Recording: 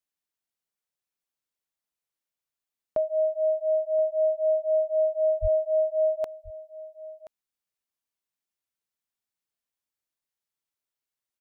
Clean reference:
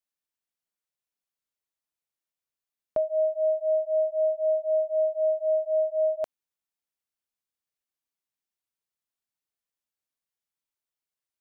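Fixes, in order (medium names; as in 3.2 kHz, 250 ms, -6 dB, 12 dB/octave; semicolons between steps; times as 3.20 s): 5.41–5.53 s: high-pass 140 Hz 24 dB/octave; inverse comb 1027 ms -17 dB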